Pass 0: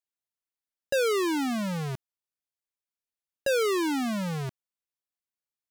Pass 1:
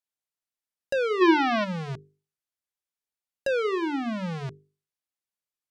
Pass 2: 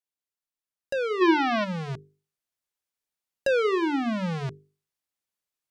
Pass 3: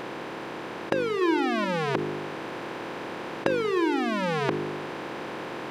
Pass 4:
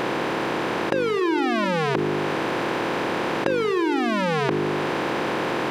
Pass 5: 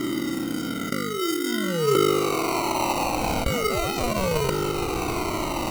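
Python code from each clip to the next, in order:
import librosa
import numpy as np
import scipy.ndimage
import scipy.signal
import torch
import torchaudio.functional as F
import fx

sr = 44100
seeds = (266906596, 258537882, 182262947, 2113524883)

y1 = fx.env_lowpass_down(x, sr, base_hz=2800.0, full_db=-26.5)
y1 = fx.spec_box(y1, sr, start_s=1.21, length_s=0.43, low_hz=320.0, high_hz=6000.0, gain_db=11)
y1 = fx.hum_notches(y1, sr, base_hz=50, count=9)
y2 = fx.rider(y1, sr, range_db=3, speed_s=2.0)
y3 = fx.bin_compress(y2, sr, power=0.2)
y3 = y3 * librosa.db_to_amplitude(-7.0)
y4 = fx.env_flatten(y3, sr, amount_pct=70)
y5 = fx.filter_sweep_lowpass(y4, sr, from_hz=290.0, to_hz=5100.0, start_s=1.53, end_s=4.62, q=2.4)
y5 = fx.sample_hold(y5, sr, seeds[0], rate_hz=1700.0, jitter_pct=0)
y5 = fx.comb_cascade(y5, sr, direction='falling', hz=0.37)
y5 = y5 * librosa.db_to_amplitude(2.5)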